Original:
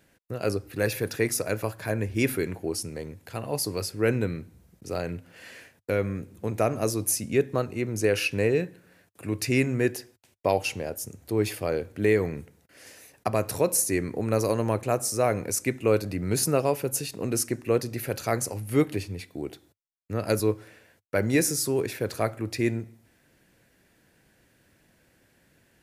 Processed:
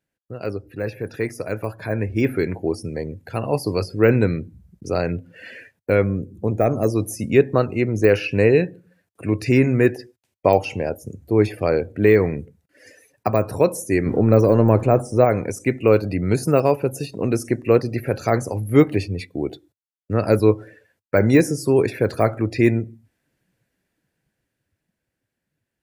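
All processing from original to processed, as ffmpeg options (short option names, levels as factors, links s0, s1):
-filter_complex "[0:a]asettb=1/sr,asplit=3[s0][s1][s2];[s0]atrim=end=6.044[s3];[s1]atrim=start=6.04:end=6.9,asetpts=PTS-STARTPTS,afade=t=in:d=0.004:c=qsin,afade=t=out:st=0.856:d=0.004:c=qsin,equalizer=f=2000:t=o:w=2.1:g=-7,asoftclip=type=hard:threshold=0.141[s4];[s2]atrim=start=6.896[s5];[s3][s4]acrossfade=d=0.004:c1=hsin:c2=qsin[s6];[s6][s5]acrossfade=d=0.004:c1=qsin:c2=hsin,asettb=1/sr,asplit=3[s7][s8][s9];[s7]atrim=end=14.064[s10];[s8]atrim=start=14.06:end=15.25,asetpts=PTS-STARTPTS,afade=t=in:d=0.004:c=qsin,afade=t=out:st=1.186:d=0.004:c=qsin,aeval=exprs='val(0)+0.5*0.0126*sgn(val(0))':c=same,tiltshelf=f=930:g=4.5[s11];[s9]atrim=start=15.246[s12];[s10][s11]acrossfade=d=0.004:c1=hsin:c2=qsin[s13];[s13][s12]acrossfade=d=0.004:c1=qsin:c2=hsin,deesser=0.9,afftdn=nr=19:nf=-47,dynaudnorm=f=260:g=17:m=3.76"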